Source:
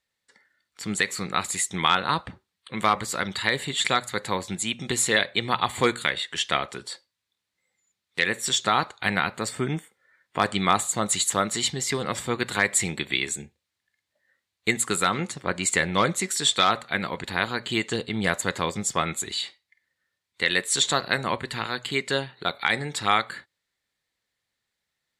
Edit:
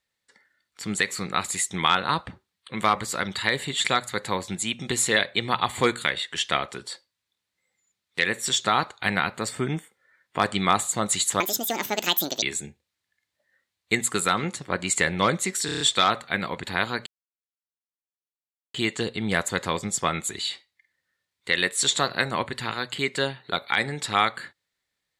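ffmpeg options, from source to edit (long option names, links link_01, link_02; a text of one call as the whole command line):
ffmpeg -i in.wav -filter_complex "[0:a]asplit=9[link_01][link_02][link_03][link_04][link_05][link_06][link_07][link_08][link_09];[link_01]atrim=end=11.404[link_10];[link_02]atrim=start=11.4:end=13.18,asetpts=PTS-STARTPTS,asetrate=76734,aresample=44100[link_11];[link_03]atrim=start=13.176:end=16.442[link_12];[link_04]atrim=start=16.408:end=16.442[link_13];[link_05]atrim=start=16.408:end=16.442[link_14];[link_06]atrim=start=16.408:end=16.442[link_15];[link_07]atrim=start=16.408:end=16.442[link_16];[link_08]atrim=start=16.408:end=17.67,asetpts=PTS-STARTPTS,afade=type=out:start_time=1.258:duration=0.004:curve=hsin,apad=pad_dur=1.68[link_17];[link_09]atrim=start=17.67,asetpts=PTS-STARTPTS,afade=type=in:duration=0.004:curve=hsin[link_18];[link_10][link_11]acrossfade=duration=0.004:curve1=hsin:curve2=hsin[link_19];[link_19][link_12]acrossfade=duration=0.004:curve1=hsin:curve2=hsin[link_20];[link_20][link_13]acrossfade=duration=0.004:curve1=hsin:curve2=hsin[link_21];[link_21][link_14]acrossfade=duration=0.004:curve1=hsin:curve2=hsin[link_22];[link_22][link_15]acrossfade=duration=0.004:curve1=hsin:curve2=hsin[link_23];[link_23][link_16]acrossfade=duration=0.004:curve1=hsin:curve2=hsin[link_24];[link_17][link_18]concat=n=2:v=0:a=1[link_25];[link_24][link_25]acrossfade=duration=0.004:curve1=hsin:curve2=hsin" out.wav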